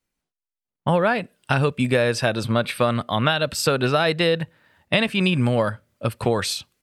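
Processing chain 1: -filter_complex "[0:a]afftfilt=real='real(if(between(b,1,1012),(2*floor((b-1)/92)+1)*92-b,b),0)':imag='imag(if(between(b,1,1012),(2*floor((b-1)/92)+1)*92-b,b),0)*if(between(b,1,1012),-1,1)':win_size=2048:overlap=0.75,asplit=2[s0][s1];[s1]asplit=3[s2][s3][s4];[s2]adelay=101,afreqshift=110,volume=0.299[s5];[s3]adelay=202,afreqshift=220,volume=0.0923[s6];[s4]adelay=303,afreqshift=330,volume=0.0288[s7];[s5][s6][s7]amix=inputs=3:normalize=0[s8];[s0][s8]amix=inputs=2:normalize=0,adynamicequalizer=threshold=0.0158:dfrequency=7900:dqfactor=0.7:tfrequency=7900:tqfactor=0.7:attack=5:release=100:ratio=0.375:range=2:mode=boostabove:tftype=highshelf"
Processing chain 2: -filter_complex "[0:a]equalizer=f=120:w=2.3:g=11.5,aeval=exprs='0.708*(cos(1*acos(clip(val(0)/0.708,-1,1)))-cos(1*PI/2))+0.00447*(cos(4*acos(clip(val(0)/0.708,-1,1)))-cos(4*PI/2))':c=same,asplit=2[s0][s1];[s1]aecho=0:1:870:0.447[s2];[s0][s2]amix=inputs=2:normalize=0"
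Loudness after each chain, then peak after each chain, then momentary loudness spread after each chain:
-19.5 LUFS, -18.0 LUFS; -4.0 dBFS, -3.0 dBFS; 7 LU, 8 LU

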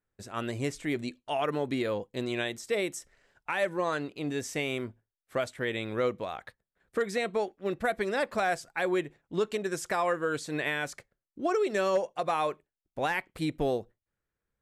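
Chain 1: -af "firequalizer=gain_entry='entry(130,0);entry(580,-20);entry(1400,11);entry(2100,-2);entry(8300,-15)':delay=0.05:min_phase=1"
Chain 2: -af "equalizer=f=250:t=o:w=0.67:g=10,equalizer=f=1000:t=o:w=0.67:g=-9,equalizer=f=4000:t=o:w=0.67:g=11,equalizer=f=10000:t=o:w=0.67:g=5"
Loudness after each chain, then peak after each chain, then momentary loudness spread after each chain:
-32.5 LUFS, -29.5 LUFS; -15.0 dBFS, -13.5 dBFS; 13 LU, 9 LU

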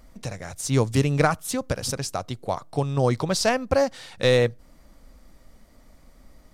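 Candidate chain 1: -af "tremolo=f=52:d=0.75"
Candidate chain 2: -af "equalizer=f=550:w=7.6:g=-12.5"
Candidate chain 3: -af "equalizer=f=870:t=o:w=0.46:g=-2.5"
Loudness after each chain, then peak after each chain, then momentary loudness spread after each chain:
-27.5 LUFS, -25.5 LUFS, -24.5 LUFS; -7.0 dBFS, -7.5 dBFS, -7.5 dBFS; 10 LU, 10 LU, 11 LU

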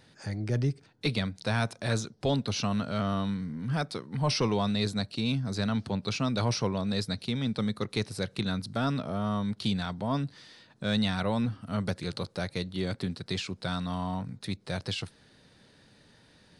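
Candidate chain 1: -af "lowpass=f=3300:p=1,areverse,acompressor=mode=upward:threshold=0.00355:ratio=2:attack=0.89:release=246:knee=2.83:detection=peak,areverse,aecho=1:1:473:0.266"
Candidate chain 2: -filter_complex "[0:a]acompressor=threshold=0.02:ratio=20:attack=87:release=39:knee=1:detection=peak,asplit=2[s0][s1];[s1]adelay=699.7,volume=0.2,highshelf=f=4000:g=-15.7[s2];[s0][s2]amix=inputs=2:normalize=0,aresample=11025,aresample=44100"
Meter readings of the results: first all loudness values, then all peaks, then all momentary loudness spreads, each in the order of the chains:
-31.5 LUFS, -32.5 LUFS; -15.5 dBFS, -15.0 dBFS; 7 LU, 6 LU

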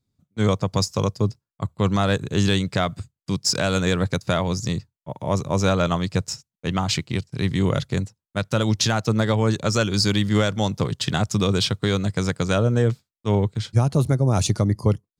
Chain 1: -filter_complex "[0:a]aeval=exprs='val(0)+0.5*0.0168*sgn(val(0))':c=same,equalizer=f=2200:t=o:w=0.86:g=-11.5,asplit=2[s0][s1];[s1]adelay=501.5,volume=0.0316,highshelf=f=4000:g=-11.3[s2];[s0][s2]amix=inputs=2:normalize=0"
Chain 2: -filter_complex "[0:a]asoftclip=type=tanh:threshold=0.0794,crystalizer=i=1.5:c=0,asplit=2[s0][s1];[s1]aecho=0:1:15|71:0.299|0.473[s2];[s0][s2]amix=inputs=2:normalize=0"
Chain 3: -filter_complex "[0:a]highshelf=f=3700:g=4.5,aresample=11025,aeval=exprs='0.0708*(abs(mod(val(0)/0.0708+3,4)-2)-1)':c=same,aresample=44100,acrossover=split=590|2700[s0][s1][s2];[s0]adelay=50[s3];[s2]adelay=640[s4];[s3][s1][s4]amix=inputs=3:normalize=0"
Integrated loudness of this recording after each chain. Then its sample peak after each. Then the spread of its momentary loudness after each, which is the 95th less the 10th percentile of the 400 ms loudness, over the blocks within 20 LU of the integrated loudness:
-22.5 LUFS, -25.5 LUFS, -30.5 LUFS; -8.0 dBFS, -9.5 dBFS, -16.5 dBFS; 8 LU, 8 LU, 5 LU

